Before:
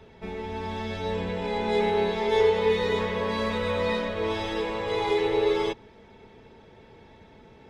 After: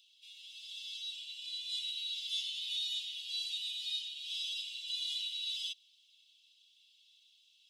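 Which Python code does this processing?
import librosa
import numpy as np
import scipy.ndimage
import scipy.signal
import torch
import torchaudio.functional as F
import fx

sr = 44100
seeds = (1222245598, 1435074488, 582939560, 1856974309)

y = scipy.signal.sosfilt(scipy.signal.cheby1(6, 3, 2800.0, 'highpass', fs=sr, output='sos'), x)
y = y * 10.0 ** (3.5 / 20.0)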